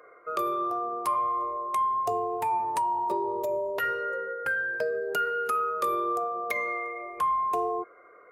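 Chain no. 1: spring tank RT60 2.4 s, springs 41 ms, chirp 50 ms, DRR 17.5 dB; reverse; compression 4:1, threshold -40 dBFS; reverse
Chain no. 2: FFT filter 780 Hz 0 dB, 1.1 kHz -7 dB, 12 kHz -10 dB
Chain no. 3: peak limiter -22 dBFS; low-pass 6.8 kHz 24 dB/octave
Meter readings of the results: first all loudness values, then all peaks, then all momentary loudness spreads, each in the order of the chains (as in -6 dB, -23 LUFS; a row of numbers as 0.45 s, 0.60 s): -40.0 LUFS, -32.5 LUFS, -29.5 LUFS; -29.0 dBFS, -18.5 dBFS, -22.0 dBFS; 2 LU, 5 LU, 4 LU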